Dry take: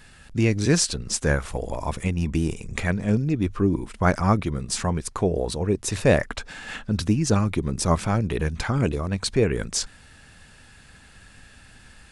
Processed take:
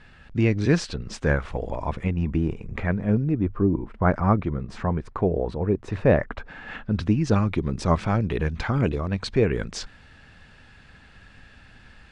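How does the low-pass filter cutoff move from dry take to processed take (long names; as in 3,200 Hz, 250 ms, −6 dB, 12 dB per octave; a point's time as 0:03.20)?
0:01.71 3,000 Hz
0:02.39 1,800 Hz
0:03.20 1,800 Hz
0:03.63 1,100 Hz
0:04.23 1,700 Hz
0:06.40 1,700 Hz
0:07.39 3,700 Hz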